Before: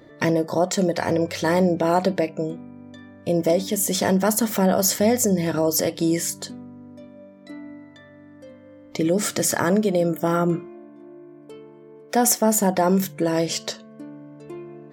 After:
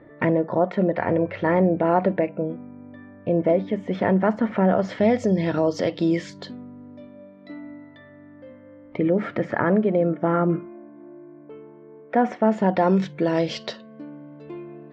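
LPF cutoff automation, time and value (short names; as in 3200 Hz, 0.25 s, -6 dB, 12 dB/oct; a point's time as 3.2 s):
LPF 24 dB/oct
4.66 s 2300 Hz
5.27 s 3900 Hz
7.6 s 3900 Hz
9.05 s 2200 Hz
12.21 s 2200 Hz
12.98 s 4100 Hz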